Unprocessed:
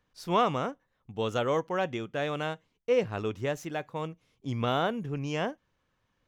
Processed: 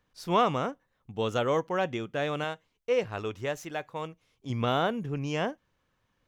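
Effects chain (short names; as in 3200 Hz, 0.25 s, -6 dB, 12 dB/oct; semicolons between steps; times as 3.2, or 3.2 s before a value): 2.44–4.5 bell 190 Hz -6 dB 2.2 oct; gain +1 dB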